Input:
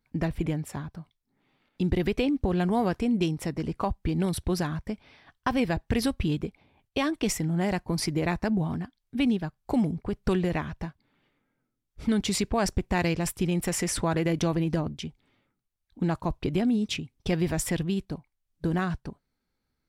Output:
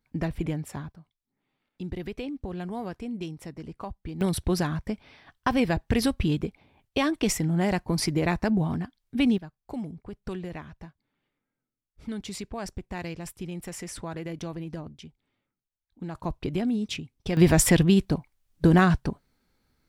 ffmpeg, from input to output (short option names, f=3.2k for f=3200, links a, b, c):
-af "asetnsamples=n=441:p=0,asendcmd='0.92 volume volume -9dB;4.21 volume volume 2dB;9.38 volume volume -9.5dB;16.15 volume volume -2dB;17.37 volume volume 9dB',volume=-1dB"